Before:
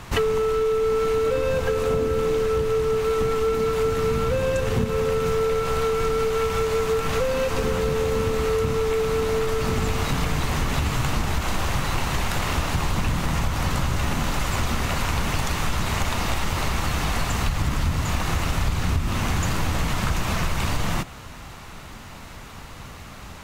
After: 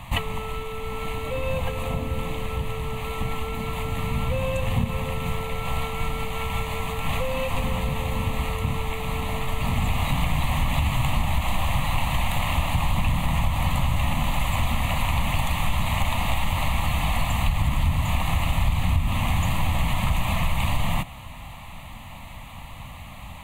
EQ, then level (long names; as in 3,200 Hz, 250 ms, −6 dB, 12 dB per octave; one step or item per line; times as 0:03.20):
phaser with its sweep stopped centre 1,500 Hz, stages 6
+2.0 dB